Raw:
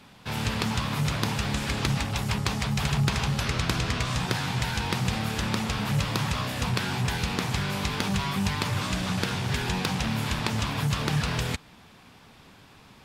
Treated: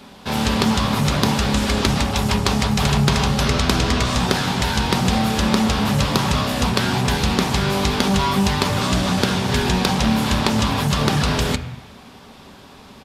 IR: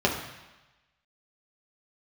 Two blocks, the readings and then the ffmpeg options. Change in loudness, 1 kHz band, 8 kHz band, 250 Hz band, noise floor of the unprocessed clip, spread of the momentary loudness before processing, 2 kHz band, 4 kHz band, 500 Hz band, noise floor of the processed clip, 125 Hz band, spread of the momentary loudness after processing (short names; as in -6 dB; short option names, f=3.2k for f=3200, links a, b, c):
+8.5 dB, +10.0 dB, +8.5 dB, +11.0 dB, -53 dBFS, 2 LU, +6.5 dB, +9.0 dB, +12.0 dB, -43 dBFS, +6.5 dB, 2 LU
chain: -filter_complex "[0:a]aresample=32000,aresample=44100,asplit=2[a][b];[1:a]atrim=start_sample=2205[c];[b][c]afir=irnorm=-1:irlink=0,volume=-19.5dB[d];[a][d]amix=inputs=2:normalize=0,volume=7.5dB"